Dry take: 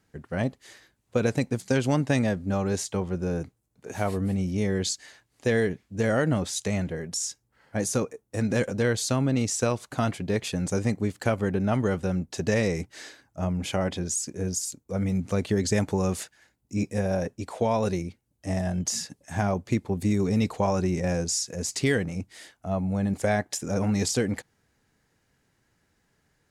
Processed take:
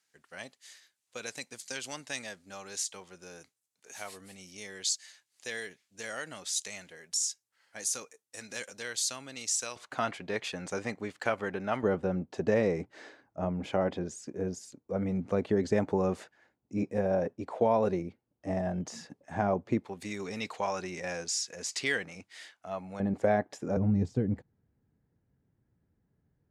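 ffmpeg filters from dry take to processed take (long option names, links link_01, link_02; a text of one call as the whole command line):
ffmpeg -i in.wav -af "asetnsamples=nb_out_samples=441:pad=0,asendcmd='9.76 bandpass f 1600;11.83 bandpass f 560;19.84 bandpass f 2400;23 bandpass f 490;23.77 bandpass f 110',bandpass=frequency=6700:width_type=q:width=0.55:csg=0" out.wav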